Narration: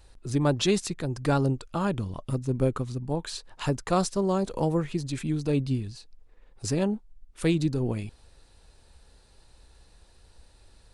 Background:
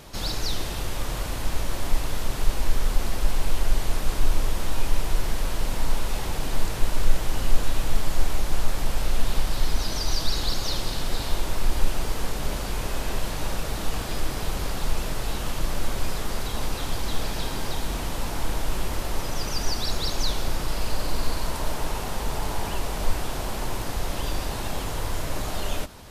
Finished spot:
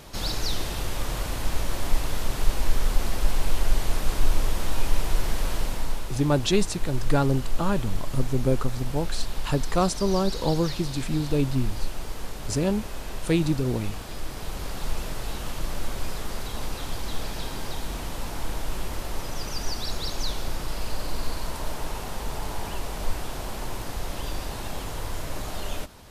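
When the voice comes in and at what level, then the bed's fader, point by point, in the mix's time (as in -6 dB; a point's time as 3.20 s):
5.85 s, +1.5 dB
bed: 5.56 s 0 dB
6.10 s -7 dB
14.18 s -7 dB
14.86 s -3.5 dB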